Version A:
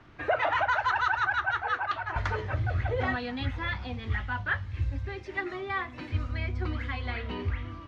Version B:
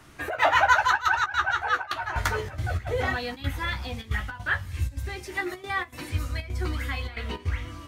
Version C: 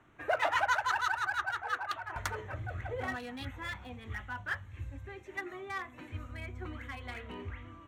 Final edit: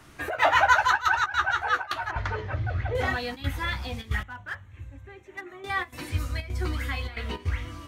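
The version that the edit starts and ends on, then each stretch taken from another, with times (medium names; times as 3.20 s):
B
2.11–2.95 s: from A
4.23–5.64 s: from C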